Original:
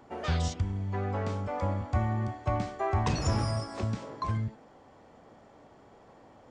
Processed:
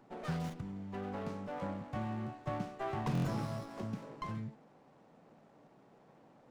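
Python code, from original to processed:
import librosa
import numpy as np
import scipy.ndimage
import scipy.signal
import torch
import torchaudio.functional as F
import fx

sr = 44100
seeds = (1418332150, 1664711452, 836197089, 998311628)

y = fx.low_shelf_res(x, sr, hz=110.0, db=-9.5, q=3.0)
y = fx.buffer_glitch(y, sr, at_s=(3.13,), block=1024, repeats=4)
y = fx.running_max(y, sr, window=9)
y = y * librosa.db_to_amplitude(-7.5)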